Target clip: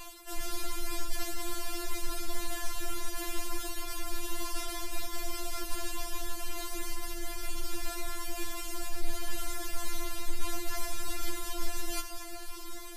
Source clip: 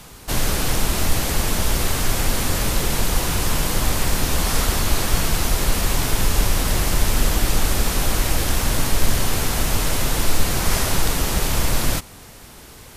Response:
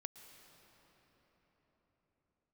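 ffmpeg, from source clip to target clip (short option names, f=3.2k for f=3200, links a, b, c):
-filter_complex "[0:a]areverse,acompressor=threshold=-29dB:ratio=6,areverse[a];[1:a]atrim=start_sample=2205[b];[a][b]afir=irnorm=-1:irlink=0,afftfilt=real='re*4*eq(mod(b,16),0)':imag='im*4*eq(mod(b,16),0)':win_size=2048:overlap=0.75,volume=4.5dB"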